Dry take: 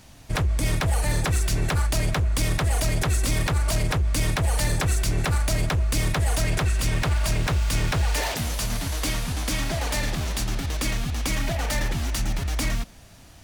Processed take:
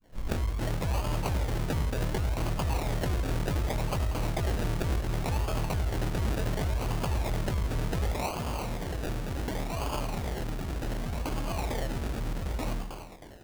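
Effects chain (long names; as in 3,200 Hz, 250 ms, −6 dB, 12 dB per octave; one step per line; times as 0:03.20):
turntable start at the beginning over 0.56 s
dynamic equaliser 860 Hz, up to +6 dB, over −45 dBFS
echo with a time of its own for lows and highs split 450 Hz, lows 84 ms, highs 316 ms, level −6.5 dB
sample-and-hold swept by an LFO 33×, swing 60% 0.68 Hz
level −7.5 dB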